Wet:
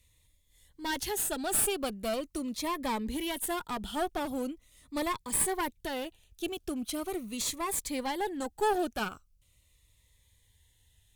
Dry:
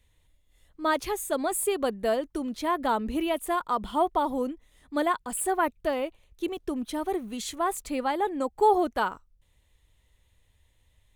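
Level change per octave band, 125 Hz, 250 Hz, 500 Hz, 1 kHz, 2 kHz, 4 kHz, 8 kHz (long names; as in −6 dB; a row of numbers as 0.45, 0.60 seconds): can't be measured, −4.5 dB, −7.0 dB, −8.0 dB, −3.5 dB, +1.5 dB, +3.5 dB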